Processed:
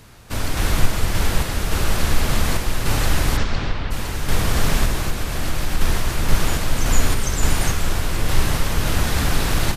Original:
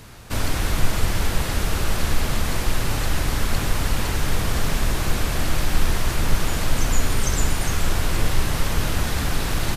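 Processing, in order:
0:03.36–0:03.90: low-pass filter 6,600 Hz → 3,800 Hz 24 dB per octave
0:04.97–0:05.81: downward compressor 2 to 1, threshold −18 dBFS, peak gain reduction 4.5 dB
sample-and-hold tremolo
level +4 dB

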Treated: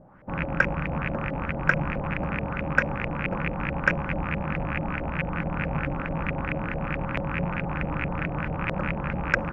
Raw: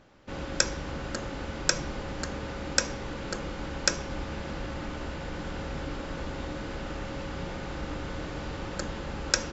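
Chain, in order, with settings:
loose part that buzzes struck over −37 dBFS, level −17 dBFS
graphic EQ with 15 bands 160 Hz +10 dB, 400 Hz −5 dB, 4,000 Hz −10 dB
auto-filter low-pass saw up 4.6 Hz 550–2,100 Hz
high-shelf EQ 5,800 Hz −5.5 dB
level +3 dB

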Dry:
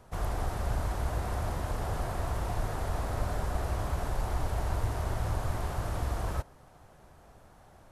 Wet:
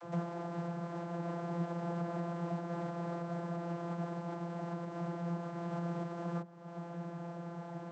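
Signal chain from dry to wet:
downward compressor 4 to 1, threshold −47 dBFS, peak gain reduction 19.5 dB
channel vocoder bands 32, saw 171 Hz
level +14.5 dB

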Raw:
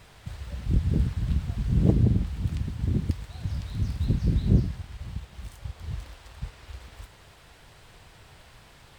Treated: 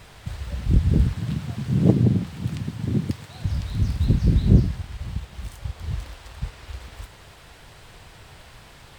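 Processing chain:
0:01.16–0:03.44: high-pass filter 110 Hz 24 dB per octave
level +5.5 dB

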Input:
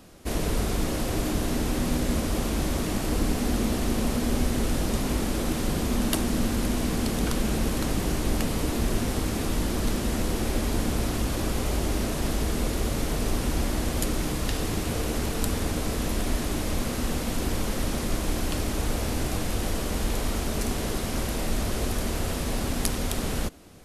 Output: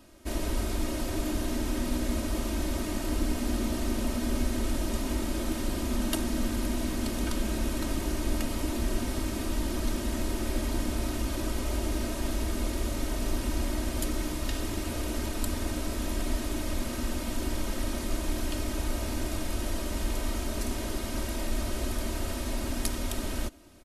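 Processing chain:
comb filter 3.2 ms, depth 64%
level −6 dB

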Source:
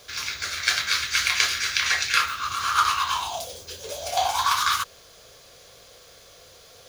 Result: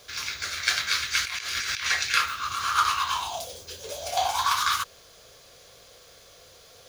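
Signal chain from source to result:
0:01.22–0:01.85: compressor whose output falls as the input rises −30 dBFS, ratio −1
level −2 dB

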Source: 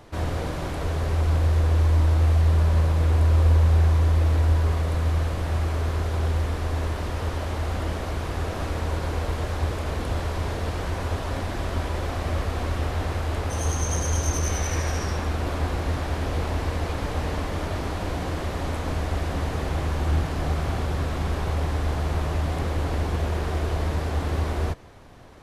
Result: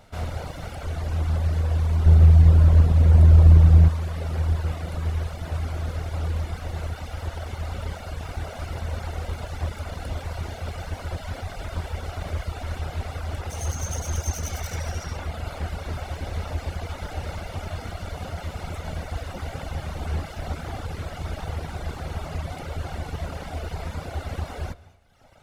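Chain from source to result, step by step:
lower of the sound and its delayed copy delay 1.4 ms
hum removal 63.64 Hz, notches 34
0:02.06–0:03.89: low-shelf EQ 430 Hz +9 dB
reverb whose tail is shaped and stops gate 250 ms rising, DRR 10.5 dB
reverb reduction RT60 1.1 s
level −1.5 dB

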